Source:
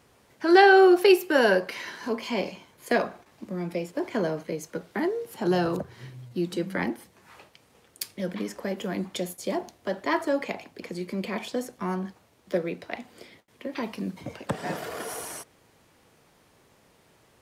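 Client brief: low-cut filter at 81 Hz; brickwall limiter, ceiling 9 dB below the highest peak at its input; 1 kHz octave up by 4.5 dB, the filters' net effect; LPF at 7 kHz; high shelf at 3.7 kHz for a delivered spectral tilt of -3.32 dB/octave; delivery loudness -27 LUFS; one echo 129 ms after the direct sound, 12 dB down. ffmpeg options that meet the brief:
-af "highpass=81,lowpass=7000,equalizer=f=1000:t=o:g=6,highshelf=f=3700:g=7.5,alimiter=limit=0.266:level=0:latency=1,aecho=1:1:129:0.251"

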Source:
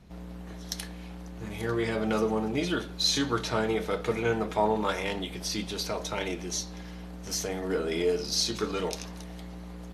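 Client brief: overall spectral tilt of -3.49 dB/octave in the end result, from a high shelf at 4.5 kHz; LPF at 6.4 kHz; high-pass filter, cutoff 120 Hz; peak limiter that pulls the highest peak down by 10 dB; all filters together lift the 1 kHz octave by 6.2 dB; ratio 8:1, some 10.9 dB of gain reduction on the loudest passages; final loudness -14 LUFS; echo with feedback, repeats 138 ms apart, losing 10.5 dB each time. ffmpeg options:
-af "highpass=120,lowpass=6400,equalizer=f=1000:t=o:g=7.5,highshelf=f=4500:g=4,acompressor=threshold=0.0447:ratio=8,alimiter=limit=0.0668:level=0:latency=1,aecho=1:1:138|276|414:0.299|0.0896|0.0269,volume=10"

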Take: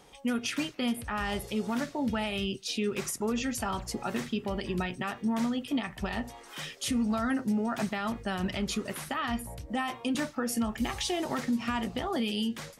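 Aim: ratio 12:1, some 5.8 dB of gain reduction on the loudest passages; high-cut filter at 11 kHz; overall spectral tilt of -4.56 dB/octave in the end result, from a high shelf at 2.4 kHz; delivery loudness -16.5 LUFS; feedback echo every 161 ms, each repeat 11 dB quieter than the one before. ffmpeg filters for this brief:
-af "lowpass=11000,highshelf=f=2400:g=-4.5,acompressor=threshold=0.0282:ratio=12,aecho=1:1:161|322|483:0.282|0.0789|0.0221,volume=9.44"

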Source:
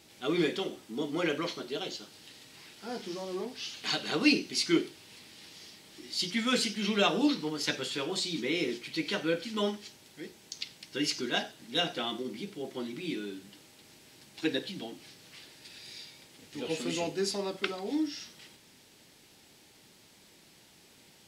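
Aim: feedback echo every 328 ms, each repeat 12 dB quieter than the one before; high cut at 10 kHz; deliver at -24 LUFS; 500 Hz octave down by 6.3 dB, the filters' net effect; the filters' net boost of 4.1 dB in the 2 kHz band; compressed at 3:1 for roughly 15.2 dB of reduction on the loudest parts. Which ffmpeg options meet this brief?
-af "lowpass=10000,equalizer=f=500:t=o:g=-9,equalizer=f=2000:t=o:g=6,acompressor=threshold=0.01:ratio=3,aecho=1:1:328|656|984:0.251|0.0628|0.0157,volume=7.5"

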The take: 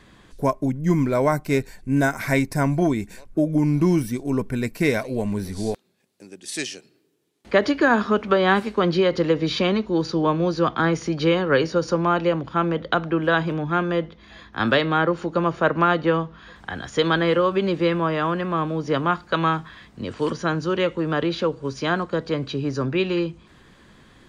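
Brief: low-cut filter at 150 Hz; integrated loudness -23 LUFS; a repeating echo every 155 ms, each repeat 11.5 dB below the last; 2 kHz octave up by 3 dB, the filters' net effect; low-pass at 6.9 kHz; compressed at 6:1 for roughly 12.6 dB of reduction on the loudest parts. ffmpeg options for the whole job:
-af "highpass=150,lowpass=6900,equalizer=f=2000:t=o:g=4,acompressor=threshold=0.0501:ratio=6,aecho=1:1:155|310|465:0.266|0.0718|0.0194,volume=2.37"

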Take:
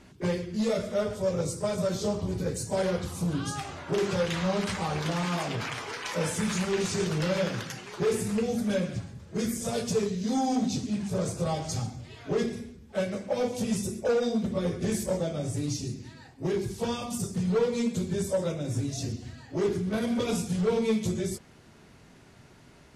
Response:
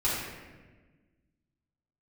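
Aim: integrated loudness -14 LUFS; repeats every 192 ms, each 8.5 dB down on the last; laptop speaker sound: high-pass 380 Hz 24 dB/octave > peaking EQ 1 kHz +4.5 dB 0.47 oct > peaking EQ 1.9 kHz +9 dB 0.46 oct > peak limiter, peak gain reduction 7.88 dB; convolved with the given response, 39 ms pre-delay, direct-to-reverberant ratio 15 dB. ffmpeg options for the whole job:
-filter_complex "[0:a]aecho=1:1:192|384|576|768:0.376|0.143|0.0543|0.0206,asplit=2[s0][s1];[1:a]atrim=start_sample=2205,adelay=39[s2];[s1][s2]afir=irnorm=-1:irlink=0,volume=0.0562[s3];[s0][s3]amix=inputs=2:normalize=0,highpass=f=380:w=0.5412,highpass=f=380:w=1.3066,equalizer=f=1000:t=o:w=0.47:g=4.5,equalizer=f=1900:t=o:w=0.46:g=9,volume=10,alimiter=limit=0.631:level=0:latency=1"

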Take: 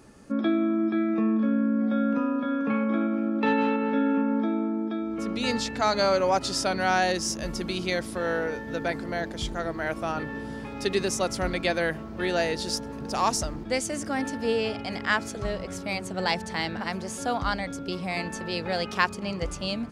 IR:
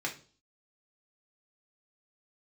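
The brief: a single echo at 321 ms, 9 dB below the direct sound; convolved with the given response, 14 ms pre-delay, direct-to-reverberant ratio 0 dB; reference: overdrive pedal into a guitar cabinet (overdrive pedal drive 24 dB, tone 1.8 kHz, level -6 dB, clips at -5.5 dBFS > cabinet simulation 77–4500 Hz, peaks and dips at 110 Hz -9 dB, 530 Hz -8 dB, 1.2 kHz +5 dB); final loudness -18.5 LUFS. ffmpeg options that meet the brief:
-filter_complex "[0:a]aecho=1:1:321:0.355,asplit=2[s0][s1];[1:a]atrim=start_sample=2205,adelay=14[s2];[s1][s2]afir=irnorm=-1:irlink=0,volume=0.596[s3];[s0][s3]amix=inputs=2:normalize=0,asplit=2[s4][s5];[s5]highpass=f=720:p=1,volume=15.8,asoftclip=type=tanh:threshold=0.531[s6];[s4][s6]amix=inputs=2:normalize=0,lowpass=f=1800:p=1,volume=0.501,highpass=77,equalizer=f=110:t=q:w=4:g=-9,equalizer=f=530:t=q:w=4:g=-8,equalizer=f=1200:t=q:w=4:g=5,lowpass=f=4500:w=0.5412,lowpass=f=4500:w=1.3066,volume=0.944"

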